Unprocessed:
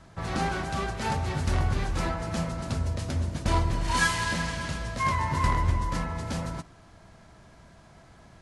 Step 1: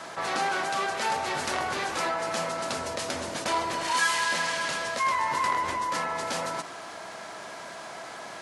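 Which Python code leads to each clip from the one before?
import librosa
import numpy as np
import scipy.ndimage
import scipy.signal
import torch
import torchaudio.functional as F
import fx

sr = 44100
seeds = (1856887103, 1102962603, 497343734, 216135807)

y = scipy.signal.sosfilt(scipy.signal.butter(2, 490.0, 'highpass', fs=sr, output='sos'), x)
y = fx.env_flatten(y, sr, amount_pct=50)
y = F.gain(torch.from_numpy(y), -1.0).numpy()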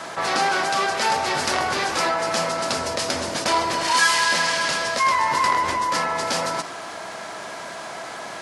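y = fx.dynamic_eq(x, sr, hz=5000.0, q=3.2, threshold_db=-48.0, ratio=4.0, max_db=5)
y = F.gain(torch.from_numpy(y), 6.5).numpy()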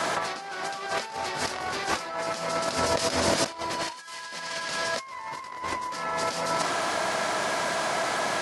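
y = fx.over_compress(x, sr, threshold_db=-28.0, ratio=-0.5)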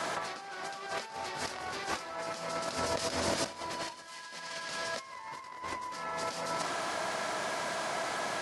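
y = fx.echo_feedback(x, sr, ms=191, feedback_pct=53, wet_db=-18)
y = F.gain(torch.from_numpy(y), -7.5).numpy()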